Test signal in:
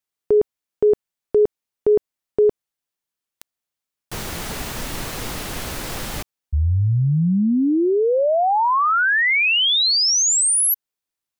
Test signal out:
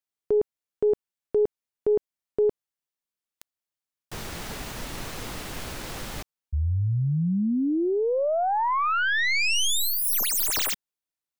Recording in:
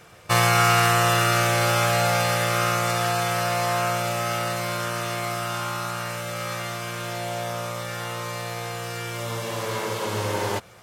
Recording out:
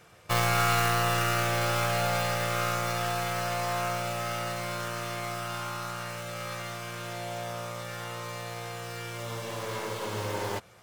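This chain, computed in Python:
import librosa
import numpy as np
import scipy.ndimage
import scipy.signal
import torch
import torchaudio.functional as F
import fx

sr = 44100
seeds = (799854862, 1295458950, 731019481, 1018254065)

y = fx.tracing_dist(x, sr, depth_ms=0.18)
y = y * 10.0 ** (-6.5 / 20.0)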